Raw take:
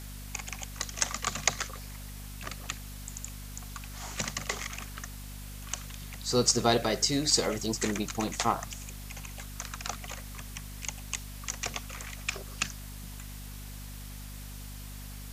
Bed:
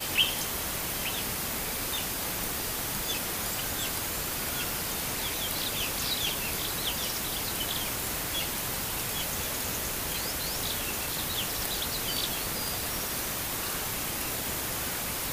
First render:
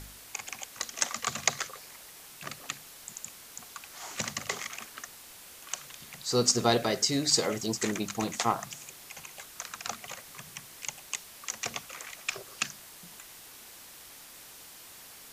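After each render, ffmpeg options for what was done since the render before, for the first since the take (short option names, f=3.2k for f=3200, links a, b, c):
-af "bandreject=f=50:t=h:w=4,bandreject=f=100:t=h:w=4,bandreject=f=150:t=h:w=4,bandreject=f=200:t=h:w=4,bandreject=f=250:t=h:w=4"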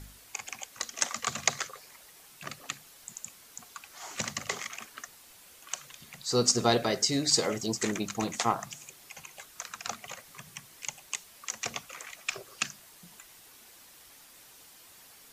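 -af "afftdn=nr=6:nf=-50"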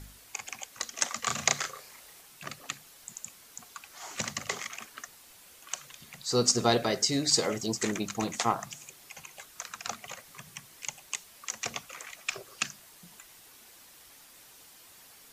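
-filter_complex "[0:a]asettb=1/sr,asplit=3[a][b][c];[a]atrim=end=1.204[d];[b]atrim=start=1.2:end=2.21,asetpts=PTS-STARTPTS,afade=t=in:d=0.004:c=qsin,afade=t=out:st=1.006:d=0.004:c=qsin,asplit=2[e][f];[f]adelay=34,volume=-3dB[g];[e][g]amix=inputs=2:normalize=0,atrim=end_sample=44541[h];[c]atrim=start=2.206[i];[d][h]acrossfade=d=0.004:c1=hsin:c2=qsin[j];[j][i]acrossfade=d=0.004:c1=qsin:c2=hsin"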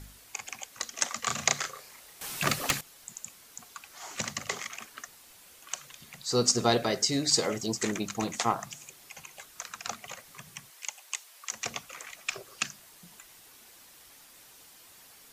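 -filter_complex "[0:a]asettb=1/sr,asplit=3[a][b][c];[a]atrim=end=2.214[d];[b]atrim=start=2.21:end=2.81,asetpts=PTS-STARTPTS,afade=t=in:d=0.004:c=qsin,afade=t=out:st=0.596:d=0.004:c=qsin,aeval=exprs='0.15*sin(PI/2*3.98*val(0)/0.15)':c=same[e];[c]atrim=start=2.806[f];[d][e]acrossfade=d=0.004:c1=hsin:c2=qsin[g];[g][f]acrossfade=d=0.004:c1=qsin:c2=hsin,asettb=1/sr,asplit=3[h][i][j];[h]atrim=end=10.704[k];[i]atrim=start=10.7:end=11.52,asetpts=PTS-STARTPTS,afade=t=in:d=0.004:c=qsin,afade=t=out:st=0.816:d=0.004:c=qsin,highpass=620[l];[j]atrim=start=11.516[m];[k][l]acrossfade=d=0.004:c1=hsin:c2=qsin[n];[n][m]acrossfade=d=0.004:c1=qsin:c2=hsin"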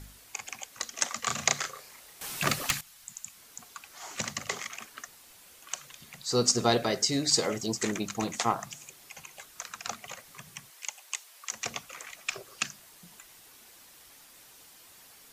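-filter_complex "[0:a]asettb=1/sr,asplit=3[a][b][c];[a]atrim=end=2.634[d];[b]atrim=start=2.63:end=3.36,asetpts=PTS-STARTPTS,afade=t=in:d=0.004:c=qsin,afade=t=out:st=0.726:d=0.004:c=qsin,equalizer=f=410:t=o:w=1.4:g=-13.5[e];[c]atrim=start=3.356[f];[d][e]acrossfade=d=0.004:c1=hsin:c2=qsin[g];[g][f]acrossfade=d=0.004:c1=qsin:c2=hsin"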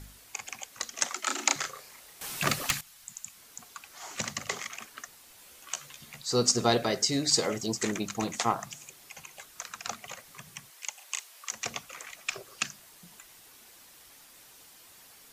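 -filter_complex "[0:a]asettb=1/sr,asplit=3[a][b][c];[a]atrim=end=1.144[d];[b]atrim=start=1.14:end=1.56,asetpts=PTS-STARTPTS,afade=t=in:d=0.004:c=qsin,afade=t=out:st=0.416:d=0.004:c=qsin,afreqshift=140[e];[c]atrim=start=1.556[f];[d][e]acrossfade=d=0.004:c1=hsin:c2=qsin[g];[g][f]acrossfade=d=0.004:c1=qsin:c2=hsin,asettb=1/sr,asplit=3[h][i][j];[h]atrim=end=5.364[k];[i]atrim=start=5.36:end=6.21,asetpts=PTS-STARTPTS,afade=t=in:d=0.004:c=qsin,afade=t=out:st=0.846:d=0.004:c=qsin,asplit=2[l][m];[m]adelay=14,volume=-5dB[n];[l][n]amix=inputs=2:normalize=0,atrim=end_sample=37485[o];[j]atrim=start=6.206[p];[k][o]acrossfade=d=0.004:c1=hsin:c2=qsin[q];[q][p]acrossfade=d=0.004:c1=qsin:c2=hsin,asettb=1/sr,asplit=3[r][s][t];[r]atrim=end=10.954[u];[s]atrim=start=10.95:end=11.51,asetpts=PTS-STARTPTS,afade=t=in:d=0.004:c=qsin,afade=t=out:st=0.556:d=0.004:c=qsin,asplit=2[v][w];[w]adelay=37,volume=-4.5dB[x];[v][x]amix=inputs=2:normalize=0,atrim=end_sample=24696[y];[t]atrim=start=11.506[z];[u][y]acrossfade=d=0.004:c1=hsin:c2=qsin[aa];[aa][z]acrossfade=d=0.004:c1=qsin:c2=hsin"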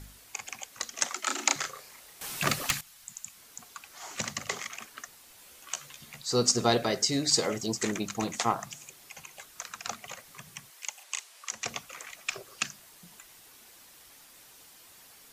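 -filter_complex "[0:a]asettb=1/sr,asplit=3[a][b][c];[a]atrim=end=11.034[d];[b]atrim=start=11.03:end=11.68,asetpts=PTS-STARTPTS,afade=t=in:d=0.004:c=qsin,afade=t=out:st=0.646:d=0.004:c=qsin,lowpass=11k[e];[c]atrim=start=11.676[f];[d][e]acrossfade=d=0.004:c1=hsin:c2=qsin[g];[g][f]acrossfade=d=0.004:c1=qsin:c2=hsin"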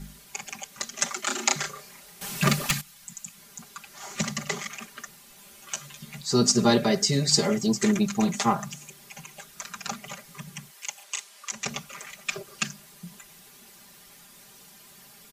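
-af "equalizer=f=150:w=0.87:g=10,aecho=1:1:5:0.91"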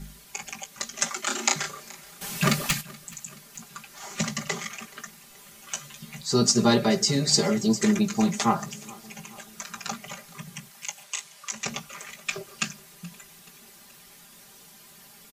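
-filter_complex "[0:a]asplit=2[a][b];[b]adelay=18,volume=-11dB[c];[a][c]amix=inputs=2:normalize=0,aecho=1:1:427|854|1281|1708:0.075|0.0442|0.0261|0.0154"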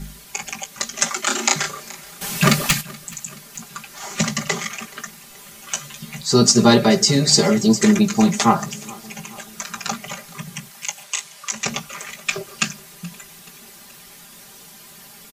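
-af "volume=7.5dB,alimiter=limit=-1dB:level=0:latency=1"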